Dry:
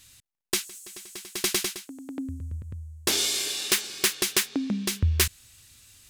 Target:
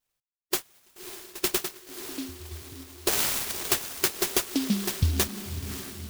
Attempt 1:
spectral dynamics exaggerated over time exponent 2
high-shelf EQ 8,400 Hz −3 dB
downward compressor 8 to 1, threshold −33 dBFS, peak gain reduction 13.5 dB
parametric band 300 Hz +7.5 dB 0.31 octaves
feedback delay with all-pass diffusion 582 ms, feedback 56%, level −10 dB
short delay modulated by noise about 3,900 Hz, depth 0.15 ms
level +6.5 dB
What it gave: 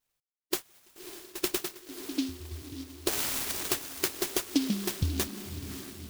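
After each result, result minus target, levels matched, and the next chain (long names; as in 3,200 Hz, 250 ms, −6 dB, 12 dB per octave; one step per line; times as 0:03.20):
downward compressor: peak gain reduction +6 dB; 250 Hz band +3.5 dB
spectral dynamics exaggerated over time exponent 2
high-shelf EQ 8,400 Hz −3 dB
downward compressor 8 to 1, threshold −26 dBFS, peak gain reduction 7.5 dB
parametric band 300 Hz +7.5 dB 0.31 octaves
feedback delay with all-pass diffusion 582 ms, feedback 56%, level −10 dB
short delay modulated by noise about 3,900 Hz, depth 0.15 ms
level +6.5 dB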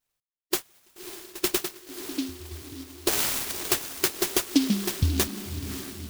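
250 Hz band +3.0 dB
spectral dynamics exaggerated over time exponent 2
high-shelf EQ 8,400 Hz −3 dB
downward compressor 8 to 1, threshold −26 dBFS, peak gain reduction 7.5 dB
parametric band 300 Hz −3 dB 0.31 octaves
feedback delay with all-pass diffusion 582 ms, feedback 56%, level −10 dB
short delay modulated by noise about 3,900 Hz, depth 0.15 ms
level +6.5 dB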